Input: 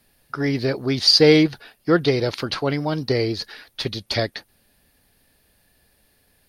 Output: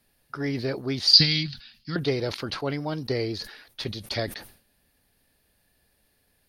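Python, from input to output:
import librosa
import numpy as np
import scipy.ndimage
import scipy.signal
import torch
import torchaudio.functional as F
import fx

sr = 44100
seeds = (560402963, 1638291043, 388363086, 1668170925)

y = fx.curve_eq(x, sr, hz=(240.0, 410.0, 4600.0, 8200.0), db=(0, -27, 10, -14), at=(1.13, 1.96))
y = fx.sustainer(y, sr, db_per_s=120.0)
y = F.gain(torch.from_numpy(y), -6.5).numpy()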